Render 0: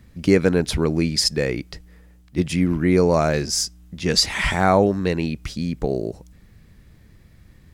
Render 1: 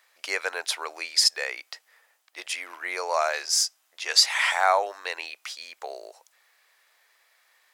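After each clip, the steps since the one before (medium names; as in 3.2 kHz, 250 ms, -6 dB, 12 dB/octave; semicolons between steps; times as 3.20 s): inverse Chebyshev high-pass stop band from 210 Hz, stop band 60 dB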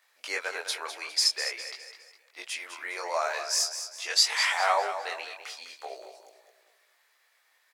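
on a send: feedback delay 204 ms, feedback 41%, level -10 dB; on the sum: detune thickener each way 16 cents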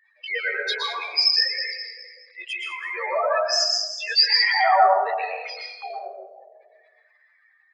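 spectral contrast enhancement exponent 3.7; plate-style reverb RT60 0.85 s, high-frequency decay 0.55×, pre-delay 105 ms, DRR 0 dB; trim +5.5 dB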